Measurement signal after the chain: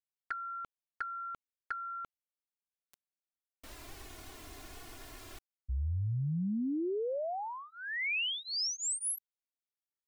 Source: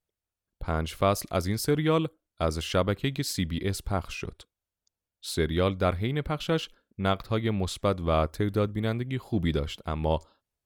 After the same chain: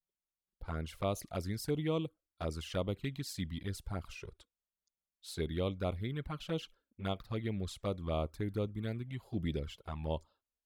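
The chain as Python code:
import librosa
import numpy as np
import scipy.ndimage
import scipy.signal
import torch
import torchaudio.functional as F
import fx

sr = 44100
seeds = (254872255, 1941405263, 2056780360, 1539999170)

y = fx.env_flanger(x, sr, rest_ms=5.3, full_db=-21.0)
y = F.gain(torch.from_numpy(y), -8.5).numpy()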